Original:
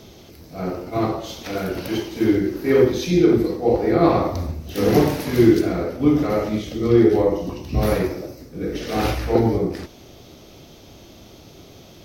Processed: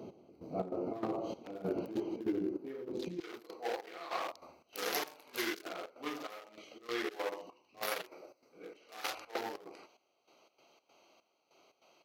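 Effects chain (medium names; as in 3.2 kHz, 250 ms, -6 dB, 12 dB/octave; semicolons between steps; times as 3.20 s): local Wiener filter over 25 samples; high-pass 230 Hz 12 dB/octave, from 3.20 s 1.5 kHz; compression 12:1, threshold -31 dBFS, peak gain reduction 20.5 dB; trance gate "x...xx.xx.xx" 146 bpm -12 dB; trim +1 dB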